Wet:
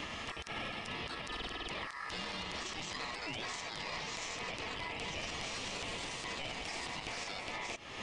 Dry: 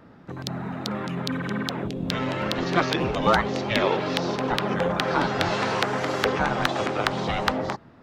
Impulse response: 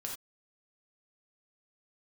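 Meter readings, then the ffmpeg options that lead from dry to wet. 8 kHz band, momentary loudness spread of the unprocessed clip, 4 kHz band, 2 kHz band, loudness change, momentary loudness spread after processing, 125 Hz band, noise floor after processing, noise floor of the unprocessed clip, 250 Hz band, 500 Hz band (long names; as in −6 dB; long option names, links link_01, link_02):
−4.0 dB, 8 LU, −9.0 dB, −12.0 dB, −14.5 dB, 2 LU, −20.0 dB, −45 dBFS, −50 dBFS, −21.5 dB, −20.5 dB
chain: -af "highpass=frequency=1000:poles=1,highshelf=frequency=2900:gain=10.5,areverse,acompressor=threshold=-32dB:ratio=6,areverse,aeval=exprs='val(0)*sin(2*PI*1500*n/s)':channel_layout=same,acontrast=88,aeval=exprs='(tanh(8.91*val(0)+0.4)-tanh(0.4))/8.91':channel_layout=same,alimiter=level_in=19.5dB:limit=-24dB:level=0:latency=1:release=302,volume=-19.5dB,aresample=22050,aresample=44100,volume=13.5dB"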